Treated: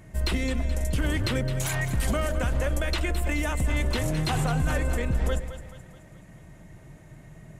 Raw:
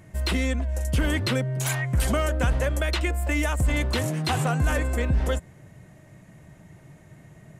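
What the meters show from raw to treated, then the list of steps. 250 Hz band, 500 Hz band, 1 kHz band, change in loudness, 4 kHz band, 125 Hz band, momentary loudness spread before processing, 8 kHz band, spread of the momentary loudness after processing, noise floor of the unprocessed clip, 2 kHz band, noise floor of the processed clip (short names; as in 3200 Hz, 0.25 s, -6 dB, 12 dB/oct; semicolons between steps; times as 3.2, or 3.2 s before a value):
-2.0 dB, -2.5 dB, -2.5 dB, -2.0 dB, -2.0 dB, -2.0 dB, 3 LU, -2.0 dB, 3 LU, -52 dBFS, -2.5 dB, -49 dBFS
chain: octaver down 2 oct, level -4 dB; limiter -18 dBFS, peak gain reduction 6 dB; on a send: split-band echo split 570 Hz, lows 0.11 s, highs 0.214 s, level -11 dB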